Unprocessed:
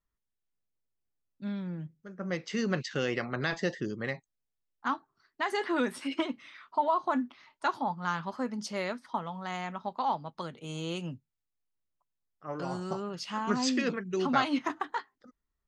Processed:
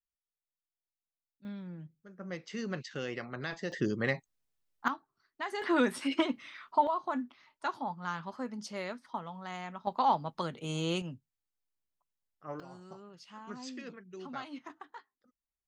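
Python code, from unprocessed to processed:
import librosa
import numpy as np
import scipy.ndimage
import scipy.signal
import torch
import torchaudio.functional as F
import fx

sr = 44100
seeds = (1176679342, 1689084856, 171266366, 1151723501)

y = fx.gain(x, sr, db=fx.steps((0.0, -17.0), (1.45, -7.0), (3.72, 3.5), (4.88, -6.0), (5.62, 2.0), (6.87, -5.0), (9.87, 3.0), (11.02, -3.5), (12.6, -15.0)))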